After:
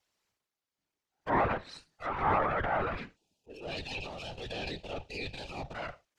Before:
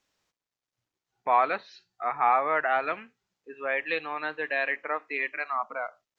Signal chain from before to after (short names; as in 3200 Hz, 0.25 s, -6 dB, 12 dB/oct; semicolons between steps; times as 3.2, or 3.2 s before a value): minimum comb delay 5 ms; spectral gain 3.16–5.74, 900–2400 Hz -17 dB; whisperiser; treble ducked by the level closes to 1500 Hz, closed at -26 dBFS; transient shaper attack -4 dB, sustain +8 dB; gain -2 dB